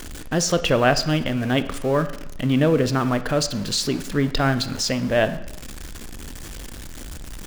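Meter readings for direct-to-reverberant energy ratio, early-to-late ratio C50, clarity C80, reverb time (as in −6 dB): 11.0 dB, 13.5 dB, 16.0 dB, 0.90 s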